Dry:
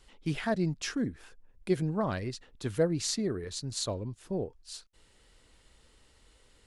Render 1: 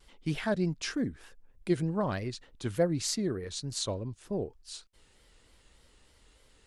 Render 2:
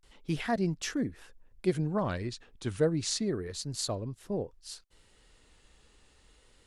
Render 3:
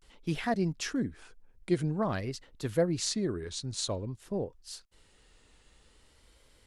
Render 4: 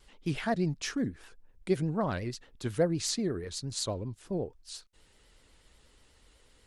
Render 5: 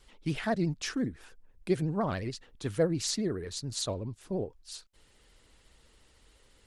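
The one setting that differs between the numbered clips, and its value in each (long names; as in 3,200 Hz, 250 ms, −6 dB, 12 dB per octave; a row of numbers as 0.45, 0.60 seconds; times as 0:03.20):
pitch vibrato, speed: 3.3, 0.3, 0.5, 8.2, 14 Hertz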